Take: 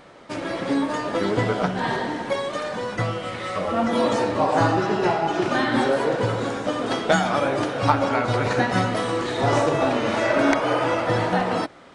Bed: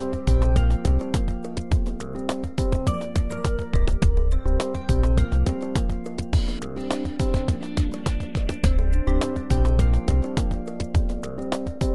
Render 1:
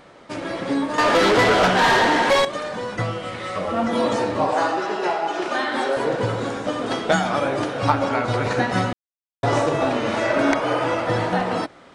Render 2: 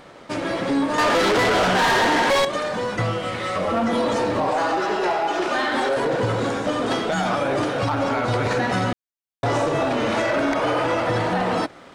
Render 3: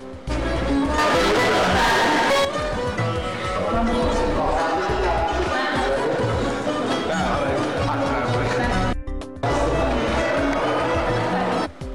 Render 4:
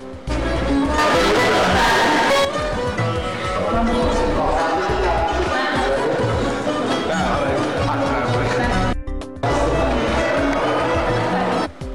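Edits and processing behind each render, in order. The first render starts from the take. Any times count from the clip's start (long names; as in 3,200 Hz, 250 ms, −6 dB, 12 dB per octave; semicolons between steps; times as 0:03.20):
0:00.98–0:02.45: mid-hump overdrive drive 24 dB, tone 6,600 Hz, clips at −8.5 dBFS; 0:04.54–0:05.97: high-pass filter 390 Hz; 0:08.93–0:09.43: silence
brickwall limiter −14.5 dBFS, peak gain reduction 11 dB; leveller curve on the samples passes 1
mix in bed −9 dB
level +2.5 dB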